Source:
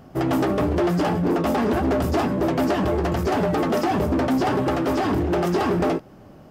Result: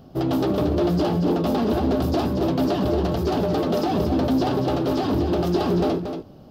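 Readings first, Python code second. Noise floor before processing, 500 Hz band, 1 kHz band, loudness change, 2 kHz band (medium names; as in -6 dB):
-46 dBFS, -0.5 dB, -3.0 dB, 0.0 dB, -7.0 dB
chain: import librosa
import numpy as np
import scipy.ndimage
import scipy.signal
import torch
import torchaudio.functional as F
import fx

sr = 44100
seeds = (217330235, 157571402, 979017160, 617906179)

p1 = fx.graphic_eq(x, sr, hz=(1000, 2000, 4000, 8000), db=(-3, -11, 8, -9))
y = p1 + fx.echo_single(p1, sr, ms=231, db=-7.5, dry=0)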